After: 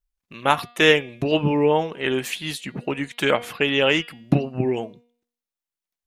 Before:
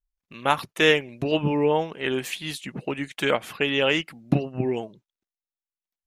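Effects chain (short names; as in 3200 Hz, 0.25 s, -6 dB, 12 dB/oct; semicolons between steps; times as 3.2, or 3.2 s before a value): de-hum 239 Hz, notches 21; gain +3 dB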